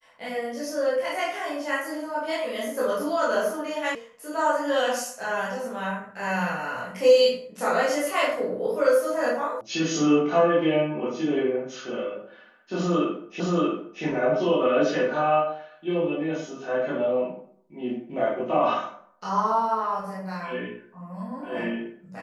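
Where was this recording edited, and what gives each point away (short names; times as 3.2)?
3.95 sound cut off
9.61 sound cut off
13.4 repeat of the last 0.63 s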